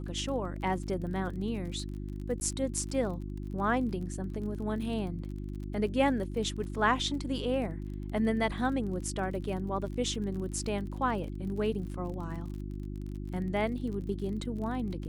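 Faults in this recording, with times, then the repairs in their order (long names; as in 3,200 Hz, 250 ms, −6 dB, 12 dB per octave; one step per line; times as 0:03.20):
surface crackle 40 per second −40 dBFS
mains hum 50 Hz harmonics 7 −38 dBFS
0:02.40–0:02.41: drop-out 10 ms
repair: click removal
hum removal 50 Hz, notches 7
repair the gap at 0:02.40, 10 ms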